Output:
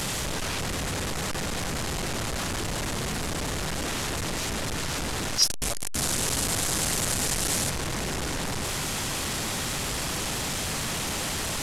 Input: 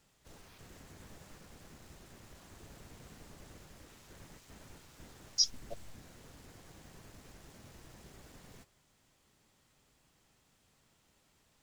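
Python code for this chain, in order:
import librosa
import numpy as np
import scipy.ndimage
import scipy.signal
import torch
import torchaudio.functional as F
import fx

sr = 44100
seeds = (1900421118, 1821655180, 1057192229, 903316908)

y = fx.delta_mod(x, sr, bps=64000, step_db=-28.0)
y = fx.peak_eq(y, sr, hz=10000.0, db=11.0, octaves=1.8, at=(5.42, 7.7))
y = y * 10.0 ** (4.5 / 20.0)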